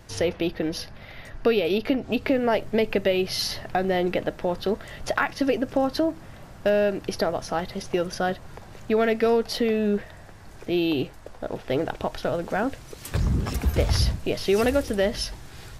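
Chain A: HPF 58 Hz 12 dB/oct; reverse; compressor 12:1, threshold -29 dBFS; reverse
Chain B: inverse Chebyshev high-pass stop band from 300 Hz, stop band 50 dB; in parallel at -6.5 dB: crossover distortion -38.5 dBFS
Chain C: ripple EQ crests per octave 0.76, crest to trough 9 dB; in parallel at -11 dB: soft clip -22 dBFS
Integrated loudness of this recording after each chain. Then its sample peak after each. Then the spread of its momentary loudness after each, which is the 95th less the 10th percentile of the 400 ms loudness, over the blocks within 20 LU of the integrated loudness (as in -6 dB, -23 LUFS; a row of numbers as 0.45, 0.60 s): -34.5, -30.0, -23.0 LUFS; -19.0, -5.5, -8.0 dBFS; 7, 14, 13 LU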